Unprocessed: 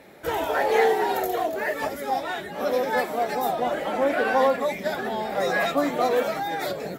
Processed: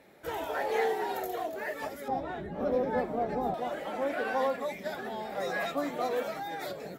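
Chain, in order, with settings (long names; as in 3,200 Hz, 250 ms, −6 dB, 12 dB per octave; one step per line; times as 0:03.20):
0:02.08–0:03.54: spectral tilt −4.5 dB per octave
level −9 dB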